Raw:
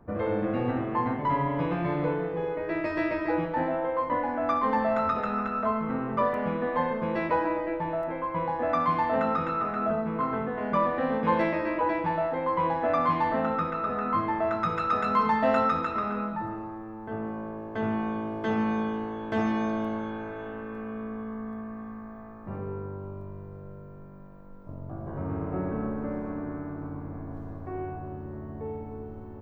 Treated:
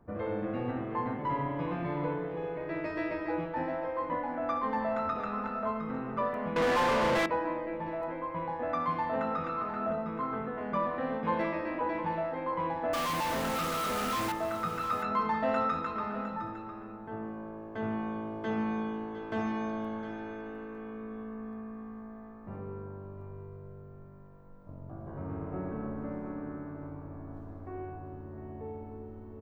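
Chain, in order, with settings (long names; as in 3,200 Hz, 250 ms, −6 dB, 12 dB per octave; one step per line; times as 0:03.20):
0:12.93–0:14.32: log-companded quantiser 2 bits
single-tap delay 708 ms −12 dB
0:06.56–0:07.26: mid-hump overdrive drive 37 dB, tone 2,300 Hz, clips at −14 dBFS
level −6 dB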